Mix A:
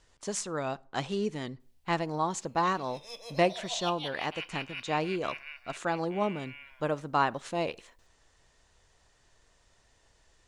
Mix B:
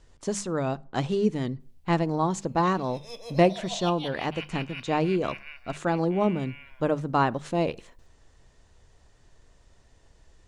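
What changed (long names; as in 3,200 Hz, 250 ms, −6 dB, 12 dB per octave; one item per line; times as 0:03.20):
speech: add mains-hum notches 50/100/150/200 Hz
master: add low-shelf EQ 470 Hz +11.5 dB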